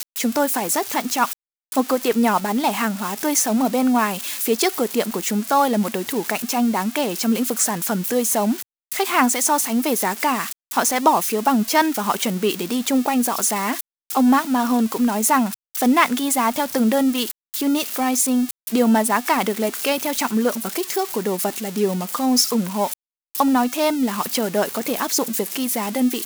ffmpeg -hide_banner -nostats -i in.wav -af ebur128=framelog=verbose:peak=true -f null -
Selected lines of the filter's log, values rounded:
Integrated loudness:
  I:         -20.2 LUFS
  Threshold: -30.2 LUFS
Loudness range:
  LRA:         2.1 LU
  Threshold: -40.1 LUFS
  LRA low:   -21.1 LUFS
  LRA high:  -19.0 LUFS
True peak:
  Peak:       -1.6 dBFS